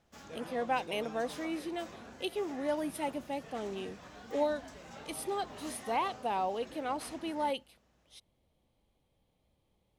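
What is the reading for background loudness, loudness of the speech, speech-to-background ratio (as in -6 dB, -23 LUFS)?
-49.0 LUFS, -36.5 LUFS, 12.5 dB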